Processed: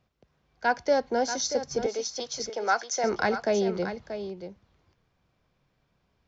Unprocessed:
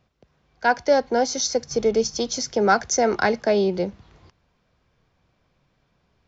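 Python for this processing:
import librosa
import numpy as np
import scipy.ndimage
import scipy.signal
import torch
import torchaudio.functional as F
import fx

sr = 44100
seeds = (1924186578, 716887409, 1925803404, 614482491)

p1 = fx.bandpass_edges(x, sr, low_hz=580.0, high_hz=6600.0, at=(1.86, 3.04))
p2 = p1 + fx.echo_single(p1, sr, ms=633, db=-10.0, dry=0)
y = F.gain(torch.from_numpy(p2), -5.5).numpy()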